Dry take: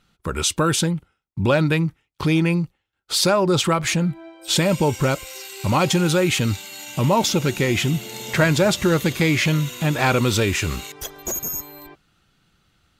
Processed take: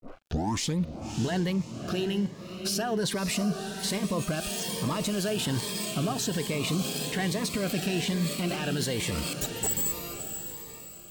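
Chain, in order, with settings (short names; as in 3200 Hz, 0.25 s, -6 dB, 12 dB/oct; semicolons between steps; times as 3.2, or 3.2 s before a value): tape start at the beginning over 1.03 s; bell 85 Hz -6 dB 0.77 oct; reverse; compressor, threshold -22 dBFS, peak gain reduction 9.5 dB; reverse; limiter -24 dBFS, peak gain reduction 11.5 dB; crossover distortion -52 dBFS; on a send: diffused feedback echo 0.707 s, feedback 40%, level -8 dB; on the sum: crackle 28/s -57 dBFS; wide varispeed 1.17×; cascading phaser rising 1.2 Hz; gain +4 dB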